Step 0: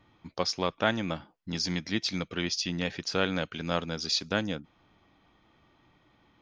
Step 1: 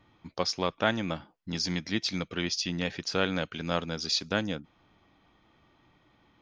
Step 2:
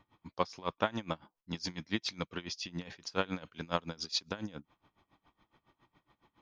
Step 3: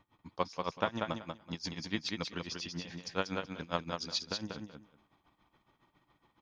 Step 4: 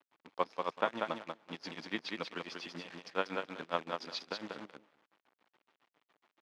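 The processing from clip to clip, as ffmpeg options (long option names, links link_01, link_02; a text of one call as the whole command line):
ffmpeg -i in.wav -af anull out.wav
ffmpeg -i in.wav -af "equalizer=frequency=1000:width=3.4:gain=7,aeval=exprs='val(0)*pow(10,-22*(0.5-0.5*cos(2*PI*7.2*n/s))/20)':channel_layout=same,volume=-2dB" out.wav
ffmpeg -i in.wav -af "aecho=1:1:189|378|567:0.596|0.101|0.0172,volume=-1.5dB" out.wav
ffmpeg -i in.wav -af "acrusher=bits=8:dc=4:mix=0:aa=0.000001,highpass=300,lowpass=3100,volume=1dB" out.wav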